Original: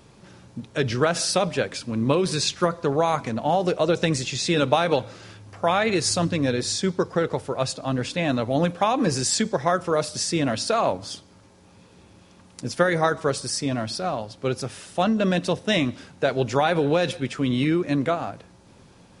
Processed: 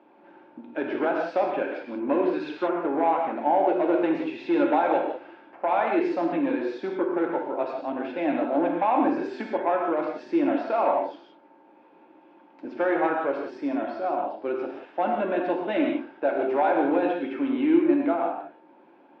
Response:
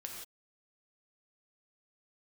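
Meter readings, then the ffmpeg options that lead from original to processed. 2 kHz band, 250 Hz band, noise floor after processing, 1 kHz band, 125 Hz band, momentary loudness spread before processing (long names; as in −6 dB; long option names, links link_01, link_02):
−5.0 dB, 0.0 dB, −55 dBFS, +0.5 dB, −22.0 dB, 7 LU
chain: -filter_complex "[0:a]asoftclip=type=hard:threshold=-16dB,highpass=frequency=310:width=0.5412,highpass=frequency=310:width=1.3066,equalizer=frequency=310:width_type=q:width=4:gain=9,equalizer=frequency=450:width_type=q:width=4:gain=-9,equalizer=frequency=860:width_type=q:width=4:gain=5,equalizer=frequency=1200:width_type=q:width=4:gain=-8,equalizer=frequency=1900:width_type=q:width=4:gain=-7,lowpass=frequency=2100:width=0.5412,lowpass=frequency=2100:width=1.3066[link_01];[1:a]atrim=start_sample=2205[link_02];[link_01][link_02]afir=irnorm=-1:irlink=0,volume=4dB"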